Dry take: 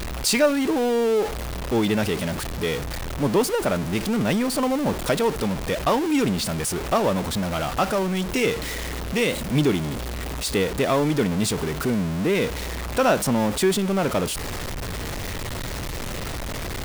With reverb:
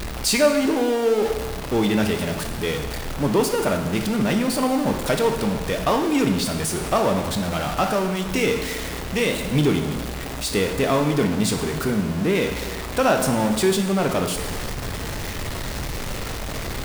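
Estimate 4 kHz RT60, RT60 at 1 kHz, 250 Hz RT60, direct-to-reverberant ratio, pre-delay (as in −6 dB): 1.2 s, 1.3 s, 1.3 s, 4.5 dB, 5 ms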